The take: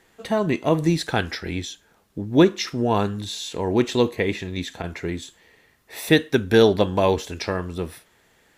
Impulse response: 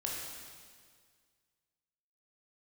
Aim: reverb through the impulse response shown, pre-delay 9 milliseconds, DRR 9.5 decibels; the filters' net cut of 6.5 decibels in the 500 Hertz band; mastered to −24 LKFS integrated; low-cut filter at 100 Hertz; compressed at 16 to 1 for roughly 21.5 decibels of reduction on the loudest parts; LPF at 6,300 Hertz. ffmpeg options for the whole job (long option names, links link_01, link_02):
-filter_complex "[0:a]highpass=100,lowpass=6300,equalizer=frequency=500:width_type=o:gain=-8.5,acompressor=threshold=-35dB:ratio=16,asplit=2[link_01][link_02];[1:a]atrim=start_sample=2205,adelay=9[link_03];[link_02][link_03]afir=irnorm=-1:irlink=0,volume=-12dB[link_04];[link_01][link_04]amix=inputs=2:normalize=0,volume=16dB"